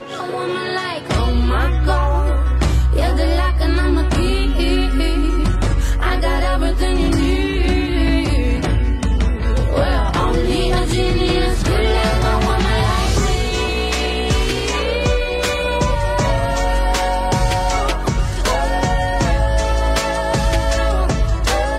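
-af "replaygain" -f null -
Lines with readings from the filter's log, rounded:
track_gain = +1.8 dB
track_peak = 0.370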